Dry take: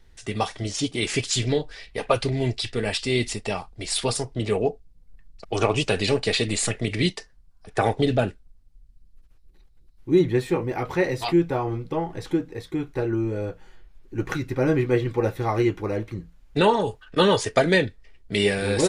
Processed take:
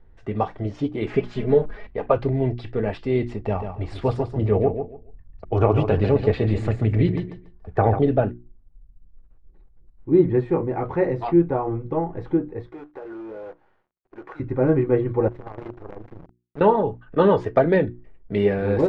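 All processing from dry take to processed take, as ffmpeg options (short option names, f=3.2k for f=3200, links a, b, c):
-filter_complex "[0:a]asettb=1/sr,asplit=3[a][b][c];[a]atrim=end=1.104[d];[b]atrim=start=1.1:end=1.87,asetpts=PTS-STARTPTS,afade=t=in:d=0.004:c=qsin,afade=t=out:st=0.766:d=0.004:c=qsin,aeval=exprs='val(0)+0.5*0.015*sgn(val(0))':c=same,highshelf=f=4.8k:g=-10.5,aecho=1:1:4.8:0.72,atrim=end_sample=33957[e];[c]atrim=start=1.866[f];[d][e]acrossfade=d=0.004:c1=hsin:c2=qsin[g];[g][f]acrossfade=d=0.004:c1=qsin:c2=hsin,asettb=1/sr,asplit=3[h][i][j];[h]atrim=end=3.394[k];[i]atrim=start=3.39:end=7.99,asetpts=PTS-STARTPTS,afade=t=in:d=0.004:c=qsin,afade=t=out:st=4.596:d=0.004:c=qsin,equalizer=f=77:t=o:w=1.1:g=11.5,aecho=1:1:142|284|426:0.398|0.0836|0.0176,atrim=end_sample=202860[l];[j]atrim=start=7.986[m];[k][l]acrossfade=d=0.004:c1=hsin:c2=qsin[n];[n][m]acrossfade=d=0.004:c1=qsin:c2=hsin,asettb=1/sr,asplit=3[o][p][q];[o]atrim=end=12.694[r];[p]atrim=start=12.69:end=14.4,asetpts=PTS-STARTPTS,afade=t=in:d=0.004:c=qsin,afade=t=out:st=1.706:d=0.004:c=qsin,highpass=580,acompressor=threshold=-34dB:ratio=10:attack=3.2:release=140:knee=1:detection=peak,acrusher=bits=8:dc=4:mix=0:aa=0.000001[s];[q]atrim=start=14.396[t];[r][s]acrossfade=d=0.004:c1=hsin:c2=qsin[u];[u][t]acrossfade=d=0.004:c1=qsin:c2=hsin,asettb=1/sr,asplit=3[v][w][x];[v]atrim=end=15.284[y];[w]atrim=start=15.28:end=16.61,asetpts=PTS-STARTPTS,afade=t=in:d=0.004:c=qsin,afade=t=out:st=1.326:d=0.004:c=qsin,acrusher=bits=4:dc=4:mix=0:aa=0.000001,acompressor=threshold=-35dB:ratio=2.5:attack=3.2:release=140:knee=1:detection=peak,tremolo=f=26:d=0.621[z];[x]atrim=start=16.606[aa];[y][z]acrossfade=d=0.004:c1=hsin:c2=qsin[ab];[ab][aa]acrossfade=d=0.004:c1=qsin:c2=hsin,lowpass=1.1k,bandreject=f=60:t=h:w=6,bandreject=f=120:t=h:w=6,bandreject=f=180:t=h:w=6,bandreject=f=240:t=h:w=6,bandreject=f=300:t=h:w=6,bandreject=f=360:t=h:w=6,volume=3dB"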